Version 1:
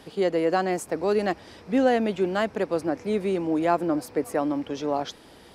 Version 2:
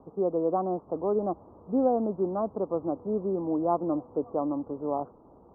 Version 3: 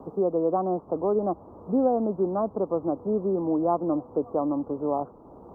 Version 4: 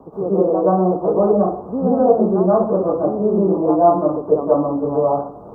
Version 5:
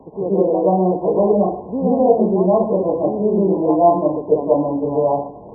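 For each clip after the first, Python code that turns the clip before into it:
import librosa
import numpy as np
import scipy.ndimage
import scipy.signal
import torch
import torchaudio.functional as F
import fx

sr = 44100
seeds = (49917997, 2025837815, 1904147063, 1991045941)

y1 = scipy.signal.sosfilt(scipy.signal.butter(12, 1200.0, 'lowpass', fs=sr, output='sos'), x)
y1 = F.gain(torch.from_numpy(y1), -3.5).numpy()
y2 = fx.band_squash(y1, sr, depth_pct=40)
y2 = F.gain(torch.from_numpy(y2), 2.5).numpy()
y3 = fx.rev_plate(y2, sr, seeds[0], rt60_s=0.53, hf_ratio=0.55, predelay_ms=115, drr_db=-9.5)
y4 = fx.brickwall_lowpass(y3, sr, high_hz=1100.0)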